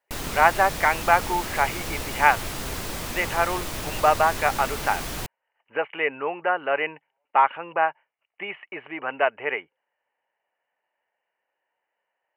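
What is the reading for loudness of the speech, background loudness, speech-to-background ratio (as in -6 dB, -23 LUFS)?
-24.0 LUFS, -31.5 LUFS, 7.5 dB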